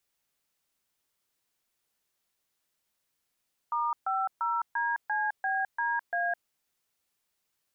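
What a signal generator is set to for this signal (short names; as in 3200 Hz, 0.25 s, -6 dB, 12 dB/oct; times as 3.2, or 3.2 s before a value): DTMF "*50DCBDA", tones 0.21 s, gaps 0.134 s, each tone -29 dBFS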